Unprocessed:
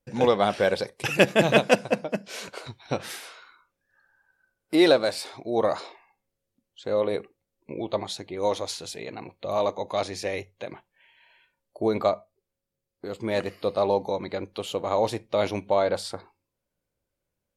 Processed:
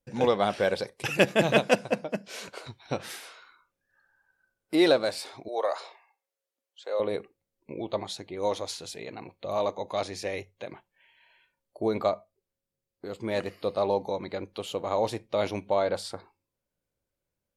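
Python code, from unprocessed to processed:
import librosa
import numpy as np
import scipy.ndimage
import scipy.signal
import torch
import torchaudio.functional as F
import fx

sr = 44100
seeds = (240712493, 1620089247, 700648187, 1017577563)

y = fx.highpass(x, sr, hz=470.0, slope=24, at=(5.48, 7.0))
y = y * librosa.db_to_amplitude(-3.0)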